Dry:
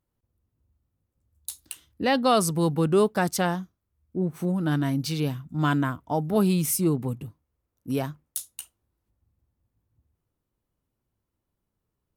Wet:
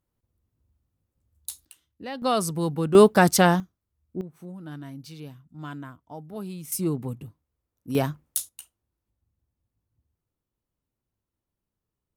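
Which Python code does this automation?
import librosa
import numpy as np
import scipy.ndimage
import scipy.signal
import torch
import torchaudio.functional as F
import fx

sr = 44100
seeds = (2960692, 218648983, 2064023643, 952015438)

y = fx.gain(x, sr, db=fx.steps((0.0, 0.0), (1.65, -12.5), (2.22, -3.0), (2.95, 7.0), (3.6, -3.0), (4.21, -14.0), (6.72, -3.0), (7.95, 4.5), (8.49, -5.0)))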